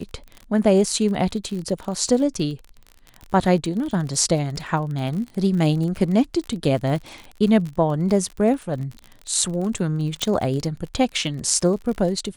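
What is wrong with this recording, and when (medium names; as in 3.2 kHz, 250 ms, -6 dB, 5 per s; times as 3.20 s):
crackle 42 per s -29 dBFS
10.22 s: pop -8 dBFS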